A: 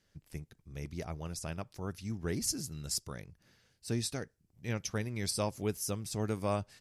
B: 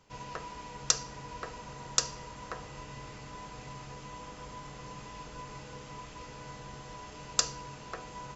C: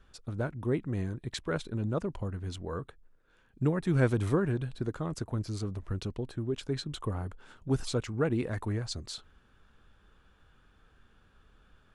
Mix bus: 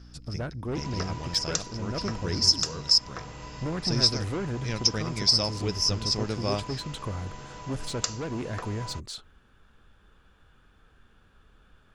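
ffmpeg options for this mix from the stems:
ffmpeg -i stem1.wav -i stem2.wav -i stem3.wav -filter_complex "[0:a]aeval=exprs='val(0)+0.00316*(sin(2*PI*60*n/s)+sin(2*PI*2*60*n/s)/2+sin(2*PI*3*60*n/s)/3+sin(2*PI*4*60*n/s)/4+sin(2*PI*5*60*n/s)/5)':channel_layout=same,lowpass=frequency=5200:width_type=q:width=14,volume=2.5dB[link_01];[1:a]adelay=650,volume=2.5dB[link_02];[2:a]asoftclip=type=tanh:threshold=-30.5dB,volume=3dB[link_03];[link_01][link_02][link_03]amix=inputs=3:normalize=0,alimiter=limit=-8dB:level=0:latency=1:release=432" out.wav

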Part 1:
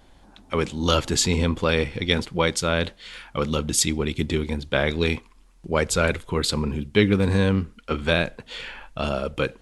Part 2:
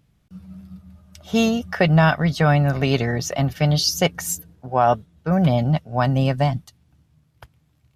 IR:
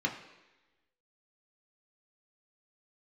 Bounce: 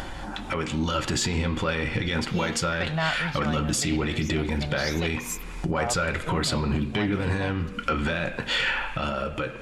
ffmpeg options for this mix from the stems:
-filter_complex "[0:a]acompressor=threshold=-29dB:ratio=2.5,alimiter=level_in=1dB:limit=-24dB:level=0:latency=1:release=32,volume=-1dB,dynaudnorm=framelen=110:gausssize=13:maxgain=6.5dB,volume=-0.5dB,asplit=3[link_01][link_02][link_03];[link_02]volume=-10.5dB[link_04];[1:a]adelay=1000,volume=-13dB[link_05];[link_03]apad=whole_len=395114[link_06];[link_05][link_06]sidechaincompress=threshold=-32dB:ratio=8:attack=39:release=460[link_07];[2:a]atrim=start_sample=2205[link_08];[link_04][link_08]afir=irnorm=-1:irlink=0[link_09];[link_01][link_07][link_09]amix=inputs=3:normalize=0,equalizer=frequency=2100:width=0.4:gain=9,acompressor=mode=upward:threshold=-22dB:ratio=2.5,asoftclip=type=tanh:threshold=-12.5dB"

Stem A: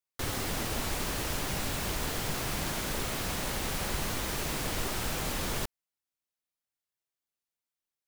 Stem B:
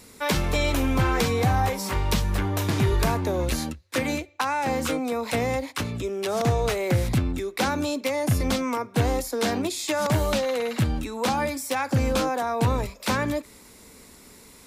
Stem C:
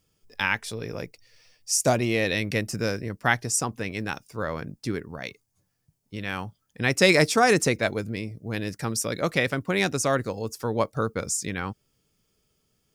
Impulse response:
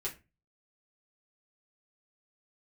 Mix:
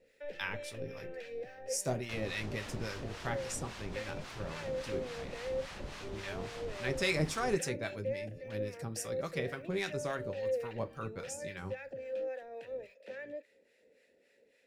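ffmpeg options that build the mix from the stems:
-filter_complex "[0:a]lowpass=5100,adelay=1900,volume=-8.5dB[link_01];[1:a]alimiter=limit=-21dB:level=0:latency=1:release=45,asplit=3[link_02][link_03][link_04];[link_02]bandpass=frequency=530:width_type=q:width=8,volume=0dB[link_05];[link_03]bandpass=frequency=1840:width_type=q:width=8,volume=-6dB[link_06];[link_04]bandpass=frequency=2480:width_type=q:width=8,volume=-9dB[link_07];[link_05][link_06][link_07]amix=inputs=3:normalize=0,volume=-1dB[link_08];[2:a]lowshelf=frequency=64:gain=11,volume=-14.5dB,asplit=2[link_09][link_10];[link_10]volume=-3dB[link_11];[3:a]atrim=start_sample=2205[link_12];[link_11][link_12]afir=irnorm=-1:irlink=0[link_13];[link_01][link_08][link_09][link_13]amix=inputs=4:normalize=0,acrossover=split=780[link_14][link_15];[link_14]aeval=exprs='val(0)*(1-0.7/2+0.7/2*cos(2*PI*3.6*n/s))':channel_layout=same[link_16];[link_15]aeval=exprs='val(0)*(1-0.7/2-0.7/2*cos(2*PI*3.6*n/s))':channel_layout=same[link_17];[link_16][link_17]amix=inputs=2:normalize=0"

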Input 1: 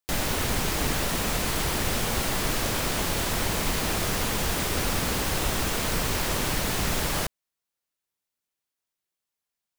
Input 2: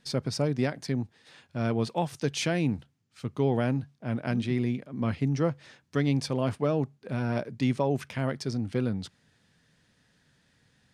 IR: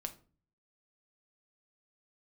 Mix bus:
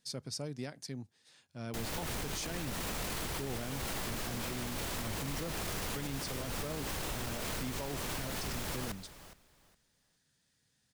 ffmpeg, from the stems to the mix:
-filter_complex "[0:a]adelay=1650,volume=-4dB,asplit=2[link_01][link_02];[link_02]volume=-22.5dB[link_03];[1:a]bass=frequency=250:gain=0,treble=frequency=4000:gain=13,volume=-13.5dB,asplit=2[link_04][link_05];[link_05]apad=whole_len=504426[link_06];[link_01][link_06]sidechaincompress=threshold=-47dB:ratio=4:attack=12:release=133[link_07];[link_03]aecho=0:1:414|828|1242:1|0.21|0.0441[link_08];[link_07][link_04][link_08]amix=inputs=3:normalize=0,alimiter=level_in=4.5dB:limit=-24dB:level=0:latency=1:release=17,volume=-4.5dB"

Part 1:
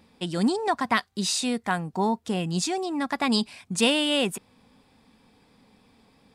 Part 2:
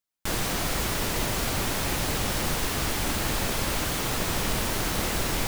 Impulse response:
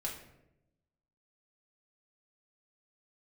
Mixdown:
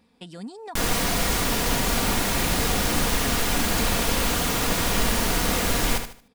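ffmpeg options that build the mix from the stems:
-filter_complex "[0:a]acompressor=threshold=-32dB:ratio=4,volume=-5.5dB[link_01];[1:a]adelay=500,volume=3dB,asplit=2[link_02][link_03];[link_03]volume=-8dB,aecho=0:1:75|150|225|300:1|0.31|0.0961|0.0298[link_04];[link_01][link_02][link_04]amix=inputs=3:normalize=0,aecho=1:1:4.2:0.35"

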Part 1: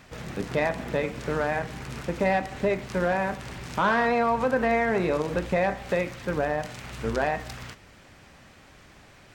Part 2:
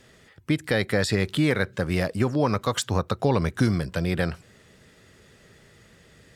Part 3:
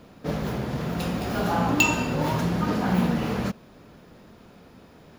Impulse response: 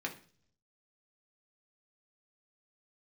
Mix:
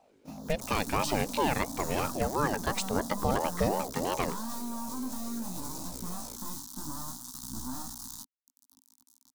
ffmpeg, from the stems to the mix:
-filter_complex "[0:a]acompressor=mode=upward:threshold=-35dB:ratio=2.5,acrusher=bits=3:dc=4:mix=0:aa=0.000001,flanger=delay=15:depth=5.7:speed=0.57,adelay=500,volume=1dB[link_01];[1:a]aeval=exprs='val(0)+0.00562*(sin(2*PI*50*n/s)+sin(2*PI*2*50*n/s)/2+sin(2*PI*3*50*n/s)/3+sin(2*PI*4*50*n/s)/4+sin(2*PI*5*50*n/s)/5)':channel_layout=same,aeval=exprs='val(0)*sin(2*PI*530*n/s+530*0.4/2.9*sin(2*PI*2.9*n/s))':channel_layout=same,volume=-3.5dB[link_02];[2:a]bandreject=frequency=60:width_type=h:width=6,bandreject=frequency=120:width_type=h:width=6,bandreject=frequency=180:width_type=h:width=6,bandreject=frequency=240:width_type=h:width=6,volume=-18.5dB[link_03];[link_01][link_03]amix=inputs=2:normalize=0,firequalizer=gain_entry='entry(170,0);entry(260,13);entry(430,-27);entry(930,3);entry(2300,-28);entry(3700,1);entry(6100,12)':delay=0.05:min_phase=1,alimiter=level_in=2.5dB:limit=-24dB:level=0:latency=1:release=148,volume=-2.5dB,volume=0dB[link_04];[link_02][link_04]amix=inputs=2:normalize=0,agate=range=-12dB:threshold=-46dB:ratio=16:detection=peak"

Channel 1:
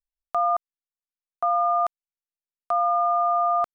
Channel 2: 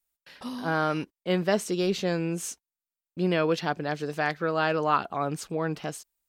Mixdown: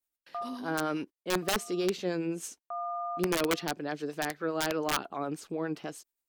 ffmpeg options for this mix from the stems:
ffmpeg -i stem1.wav -i stem2.wav -filter_complex "[0:a]lowpass=1400,volume=-11dB[link_01];[1:a]equalizer=frequency=310:width=1.1:gain=9.5,acrossover=split=630[link_02][link_03];[link_02]aeval=exprs='val(0)*(1-0.5/2+0.5/2*cos(2*PI*9.6*n/s))':channel_layout=same[link_04];[link_03]aeval=exprs='val(0)*(1-0.5/2-0.5/2*cos(2*PI*9.6*n/s))':channel_layout=same[link_05];[link_04][link_05]amix=inputs=2:normalize=0,volume=-4dB,asplit=2[link_06][link_07];[link_07]apad=whole_len=165221[link_08];[link_01][link_08]sidechaincompress=threshold=-46dB:ratio=4:attack=32:release=296[link_09];[link_09][link_06]amix=inputs=2:normalize=0,lowshelf=frequency=400:gain=-7,aeval=exprs='(mod(10*val(0)+1,2)-1)/10':channel_layout=same" out.wav

